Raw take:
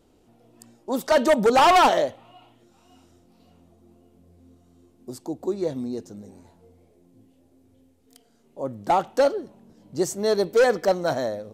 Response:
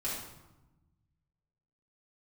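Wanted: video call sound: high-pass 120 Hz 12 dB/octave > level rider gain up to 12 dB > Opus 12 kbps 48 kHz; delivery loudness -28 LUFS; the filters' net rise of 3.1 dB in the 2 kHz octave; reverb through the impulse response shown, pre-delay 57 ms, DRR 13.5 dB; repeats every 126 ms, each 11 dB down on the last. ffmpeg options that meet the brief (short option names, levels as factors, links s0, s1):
-filter_complex "[0:a]equalizer=f=2000:t=o:g=4,aecho=1:1:126|252|378:0.282|0.0789|0.0221,asplit=2[s0][s1];[1:a]atrim=start_sample=2205,adelay=57[s2];[s1][s2]afir=irnorm=-1:irlink=0,volume=0.133[s3];[s0][s3]amix=inputs=2:normalize=0,highpass=120,dynaudnorm=m=3.98,volume=0.473" -ar 48000 -c:a libopus -b:a 12k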